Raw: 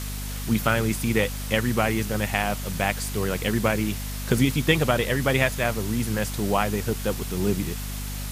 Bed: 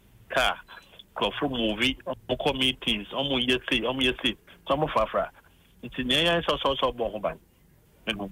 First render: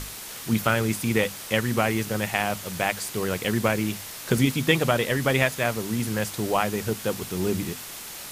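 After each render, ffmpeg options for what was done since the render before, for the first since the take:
ffmpeg -i in.wav -af "bandreject=frequency=50:width_type=h:width=6,bandreject=frequency=100:width_type=h:width=6,bandreject=frequency=150:width_type=h:width=6,bandreject=frequency=200:width_type=h:width=6,bandreject=frequency=250:width_type=h:width=6" out.wav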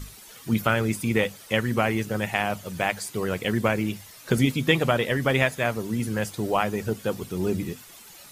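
ffmpeg -i in.wav -af "afftdn=noise_reduction=12:noise_floor=-38" out.wav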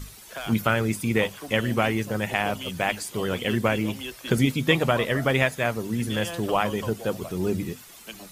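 ffmpeg -i in.wav -i bed.wav -filter_complex "[1:a]volume=-12dB[link_01];[0:a][link_01]amix=inputs=2:normalize=0" out.wav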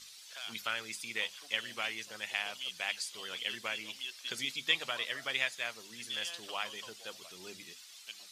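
ffmpeg -i in.wav -af "bandpass=frequency=4400:width_type=q:width=1.4:csg=0" out.wav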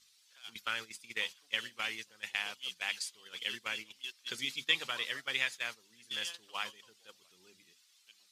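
ffmpeg -i in.wav -af "agate=range=-14dB:threshold=-40dB:ratio=16:detection=peak,equalizer=frequency=650:width=4.1:gain=-8.5" out.wav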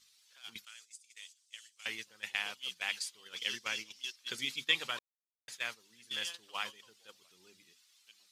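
ffmpeg -i in.wav -filter_complex "[0:a]asettb=1/sr,asplit=3[link_01][link_02][link_03];[link_01]atrim=end=0.654[link_04];[link_02]atrim=start=0.65:end=1.86,asetpts=PTS-STARTPTS,afade=type=in:duration=0.004:curve=qsin,afade=type=out:start_time=1.206:duration=0.004:curve=qsin,bandpass=frequency=7600:width_type=q:width=2.3[link_05];[link_03]atrim=start=1.856[link_06];[link_04][link_05]acrossfade=duration=0.004:curve1=hsin:curve2=qsin[link_07];[link_07][link_06]acrossfade=duration=0.004:curve1=qsin:curve2=hsin,asettb=1/sr,asplit=3[link_08][link_09][link_10];[link_08]atrim=end=3.364[link_11];[link_09]atrim=start=3.36:end=4.16,asetpts=PTS-STARTPTS,afade=type=in:duration=0.004:curve=qsin,afade=type=out:start_time=0.796:duration=0.004:curve=qsin,equalizer=frequency=5600:width=2.2:gain=10[link_12];[link_10]atrim=start=4.156[link_13];[link_11][link_12]acrossfade=duration=0.004:curve1=hsin:curve2=qsin[link_14];[link_14][link_13]acrossfade=duration=0.004:curve1=qsin:curve2=hsin,asplit=3[link_15][link_16][link_17];[link_15]atrim=end=4.99,asetpts=PTS-STARTPTS,afade=type=out:start_time=4.986:duration=0.004:curve=hsin[link_18];[link_16]atrim=start=4.99:end=5.48,asetpts=PTS-STARTPTS,volume=0[link_19];[link_17]atrim=start=5.48,asetpts=PTS-STARTPTS,afade=type=in:duration=0.004:curve=hsin[link_20];[link_18][link_19][link_20]concat=n=3:v=0:a=1" out.wav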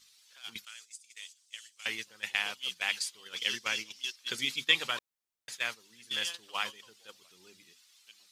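ffmpeg -i in.wav -af "volume=4.5dB" out.wav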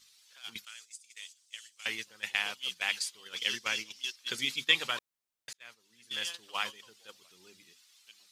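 ffmpeg -i in.wav -filter_complex "[0:a]asplit=2[link_01][link_02];[link_01]atrim=end=5.53,asetpts=PTS-STARTPTS,afade=type=out:start_time=5.526:duration=0.004:curve=hsin[link_03];[link_02]atrim=start=5.53,asetpts=PTS-STARTPTS,afade=type=in:duration=0.88[link_04];[link_03][link_04]concat=n=2:v=0:a=1" out.wav

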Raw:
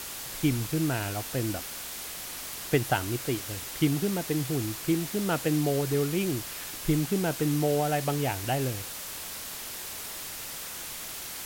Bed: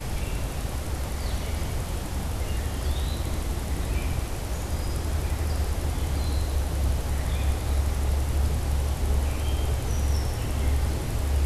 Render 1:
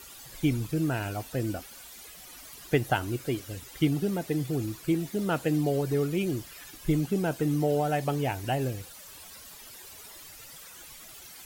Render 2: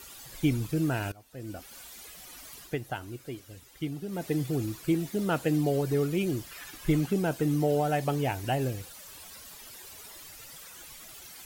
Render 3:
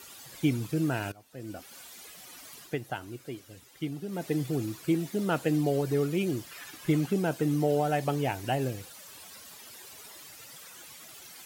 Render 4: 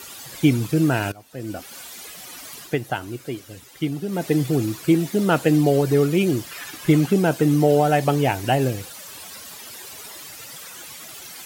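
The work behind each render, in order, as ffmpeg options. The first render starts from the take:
ffmpeg -i in.wav -af "afftdn=noise_reduction=13:noise_floor=-39" out.wav
ffmpeg -i in.wav -filter_complex "[0:a]asettb=1/sr,asplit=3[link_01][link_02][link_03];[link_01]atrim=end=6.514[link_04];[link_02]atrim=start=6.51:end=7.13,asetpts=PTS-STARTPTS,afade=type=in:duration=0.004:curve=qsin,afade=type=out:start_time=0.616:duration=0.004:curve=qsin,equalizer=frequency=1500:width=0.63:gain=5[link_05];[link_03]atrim=start=7.126[link_06];[link_04][link_05]acrossfade=duration=0.004:curve1=hsin:curve2=qsin[link_07];[link_07][link_06]acrossfade=duration=0.004:curve1=qsin:curve2=hsin,asplit=4[link_08][link_09][link_10][link_11];[link_08]atrim=end=1.12,asetpts=PTS-STARTPTS,afade=type=out:start_time=1.116:duration=0.004:curve=hsin:silence=0.1[link_12];[link_09]atrim=start=1.12:end=2.76,asetpts=PTS-STARTPTS,afade=type=in:duration=0.64:curve=qua:silence=0.1,afade=type=out:start_time=1.46:duration=0.18:silence=0.354813[link_13];[link_10]atrim=start=2.76:end=4.08,asetpts=PTS-STARTPTS,volume=-9dB[link_14];[link_11]atrim=start=4.08,asetpts=PTS-STARTPTS,afade=type=in:duration=0.18:silence=0.354813[link_15];[link_12][link_13][link_14][link_15]concat=n=4:v=0:a=1" out.wav
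ffmpeg -i in.wav -af "highpass=110,highshelf=frequency=12000:gain=-3.5" out.wav
ffmpeg -i in.wav -af "volume=9.5dB" out.wav

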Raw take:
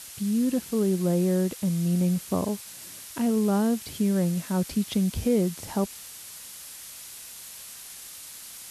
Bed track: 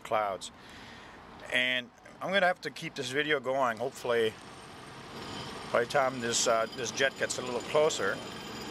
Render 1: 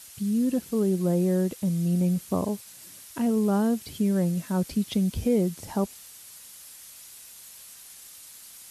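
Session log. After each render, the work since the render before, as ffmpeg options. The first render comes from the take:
ffmpeg -i in.wav -af "afftdn=noise_reduction=6:noise_floor=-43" out.wav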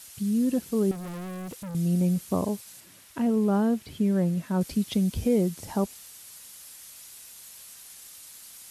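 ffmpeg -i in.wav -filter_complex "[0:a]asettb=1/sr,asplit=3[link_01][link_02][link_03];[link_01]atrim=end=0.914[link_04];[link_02]atrim=start=0.91:end=1.75,asetpts=PTS-STARTPTS,afade=type=in:duration=0.004:curve=qsin,afade=type=out:start_time=0.836:duration=0.004:curve=qsin,volume=35dB,asoftclip=hard,volume=-35dB[link_05];[link_03]atrim=start=1.746[link_06];[link_04][link_05]acrossfade=duration=0.004:curve1=hsin:curve2=qsin[link_07];[link_07][link_06]acrossfade=duration=0.004:curve1=qsin:curve2=hsin,asettb=1/sr,asplit=3[link_08][link_09][link_10];[link_08]atrim=end=2.804[link_11];[link_09]atrim=start=2.8:end=4.61,asetpts=PTS-STARTPTS,afade=type=in:duration=0.004:curve=qsin,afade=type=out:start_time=1.806:duration=0.004:curve=qsin,acrossover=split=3500[link_12][link_13];[link_13]acompressor=threshold=-51dB:ratio=4:attack=1:release=60[link_14];[link_12][link_14]amix=inputs=2:normalize=0[link_15];[link_10]atrim=start=4.606[link_16];[link_11][link_15]acrossfade=duration=0.004:curve1=hsin:curve2=qsin[link_17];[link_17][link_16]acrossfade=duration=0.004:curve1=qsin:curve2=hsin" out.wav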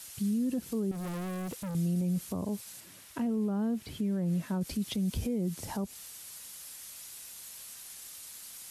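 ffmpeg -i in.wav -filter_complex "[0:a]acrossover=split=270[link_01][link_02];[link_02]acompressor=threshold=-31dB:ratio=6[link_03];[link_01][link_03]amix=inputs=2:normalize=0,alimiter=level_in=0.5dB:limit=-24dB:level=0:latency=1:release=54,volume=-0.5dB" out.wav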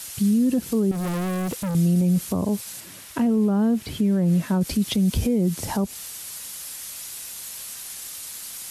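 ffmpeg -i in.wav -af "volume=10.5dB" out.wav

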